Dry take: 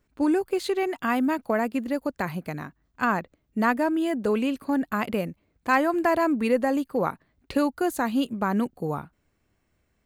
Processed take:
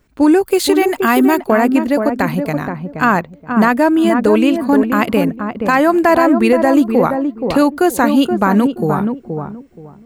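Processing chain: 0.46–1.40 s: treble shelf 6.7 kHz +11 dB; on a send: filtered feedback delay 475 ms, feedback 24%, low-pass 860 Hz, level -5 dB; on the sum: loudness maximiser +13.5 dB; trim -1.5 dB

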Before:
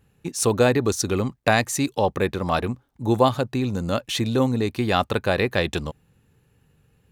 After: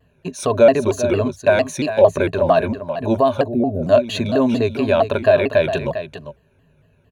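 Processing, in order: rippled EQ curve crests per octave 1.5, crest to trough 13 dB; peak limiter -11.5 dBFS, peak gain reduction 9 dB; tone controls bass -2 dB, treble -11 dB; small resonant body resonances 600/3100 Hz, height 13 dB, ringing for 35 ms; on a send: delay 399 ms -10.5 dB; on the sum: time-frequency box 3.48–3.83 s, 810–11000 Hz -27 dB; vibrato with a chosen wave saw down 4.4 Hz, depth 160 cents; trim +2 dB

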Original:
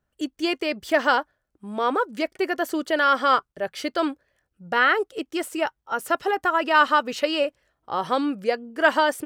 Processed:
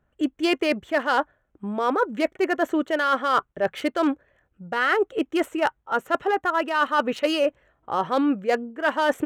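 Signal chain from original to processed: local Wiener filter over 9 samples; reverse; compression 12:1, threshold -26 dBFS, peak gain reduction 14.5 dB; reverse; trim +8 dB

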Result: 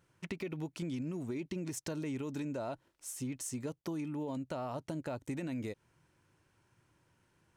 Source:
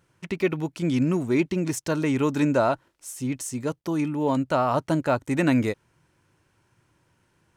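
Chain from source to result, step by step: dynamic bell 1.3 kHz, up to -7 dB, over -38 dBFS, Q 1.1; peak limiter -18.5 dBFS, peak gain reduction 8 dB; compression, threshold -30 dBFS, peak gain reduction 8 dB; trim -5.5 dB

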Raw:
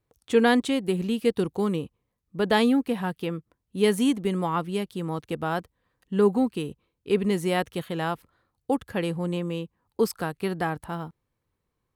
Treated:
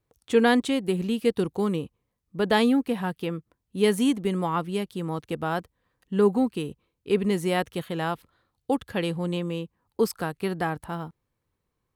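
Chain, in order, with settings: 8.13–9.51 s: peaking EQ 3.6 kHz +5 dB 0.78 oct

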